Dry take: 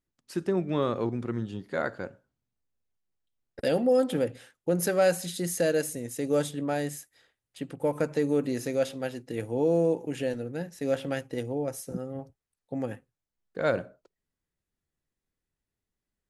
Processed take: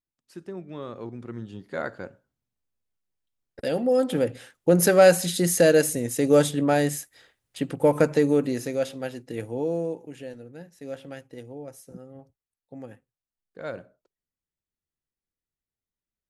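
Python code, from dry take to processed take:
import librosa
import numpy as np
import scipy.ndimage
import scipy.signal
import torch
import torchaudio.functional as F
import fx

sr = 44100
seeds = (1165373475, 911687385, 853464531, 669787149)

y = fx.gain(x, sr, db=fx.line((0.79, -10.0), (1.77, -1.0), (3.68, -1.0), (4.74, 8.0), (8.02, 8.0), (8.74, 0.5), (9.41, 0.5), (10.17, -8.5)))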